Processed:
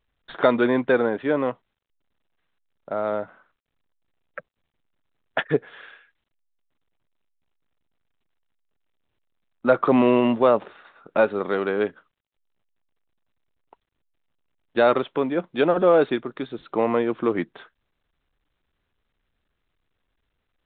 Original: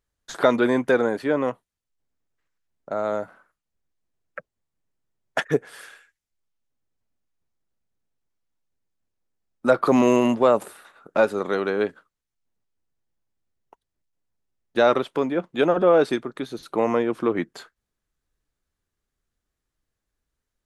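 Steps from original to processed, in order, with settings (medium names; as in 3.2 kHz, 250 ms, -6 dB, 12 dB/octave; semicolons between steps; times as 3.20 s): µ-law 64 kbps 8 kHz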